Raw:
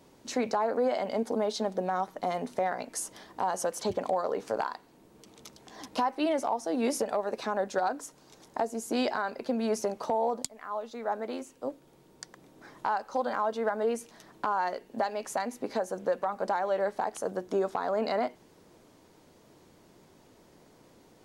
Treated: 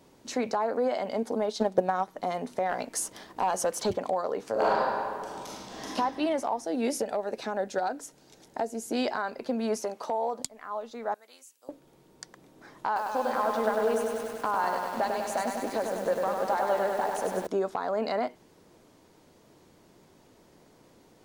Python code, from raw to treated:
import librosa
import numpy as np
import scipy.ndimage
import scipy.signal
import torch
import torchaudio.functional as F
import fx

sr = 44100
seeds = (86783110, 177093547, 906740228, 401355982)

y = fx.transient(x, sr, attack_db=10, sustain_db=-3, at=(1.4, 2.15))
y = fx.leveller(y, sr, passes=1, at=(2.69, 3.96))
y = fx.reverb_throw(y, sr, start_s=4.52, length_s=1.4, rt60_s=2.2, drr_db=-8.5)
y = fx.peak_eq(y, sr, hz=1100.0, db=-8.0, octaves=0.36, at=(6.61, 9.04))
y = fx.highpass(y, sr, hz=390.0, slope=6, at=(9.77, 10.4))
y = fx.differentiator(y, sr, at=(11.14, 11.69))
y = fx.echo_crushed(y, sr, ms=99, feedback_pct=80, bits=8, wet_db=-4, at=(12.86, 17.47))